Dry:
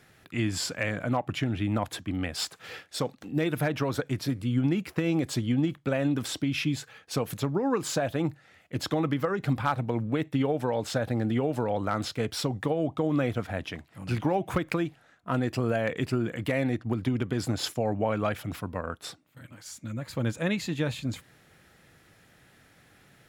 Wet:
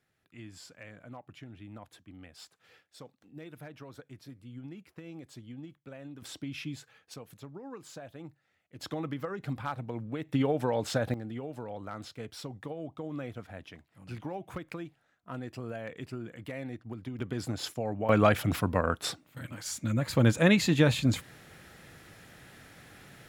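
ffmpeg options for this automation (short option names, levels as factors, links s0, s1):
-af "asetnsamples=n=441:p=0,asendcmd='6.22 volume volume -10.5dB;7.14 volume volume -17.5dB;8.81 volume volume -8.5dB;10.29 volume volume -1dB;11.14 volume volume -12dB;17.19 volume volume -5.5dB;18.09 volume volume 6dB',volume=0.112"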